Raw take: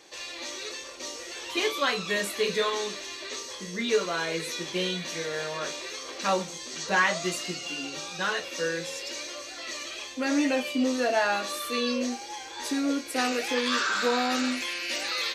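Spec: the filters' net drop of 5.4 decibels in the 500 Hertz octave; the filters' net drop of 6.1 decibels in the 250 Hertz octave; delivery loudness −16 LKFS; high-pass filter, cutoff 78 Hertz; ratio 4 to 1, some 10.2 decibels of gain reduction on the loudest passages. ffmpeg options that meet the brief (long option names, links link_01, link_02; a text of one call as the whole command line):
ffmpeg -i in.wav -af "highpass=78,equalizer=frequency=250:width_type=o:gain=-5.5,equalizer=frequency=500:width_type=o:gain=-5,acompressor=threshold=-31dB:ratio=4,volume=18dB" out.wav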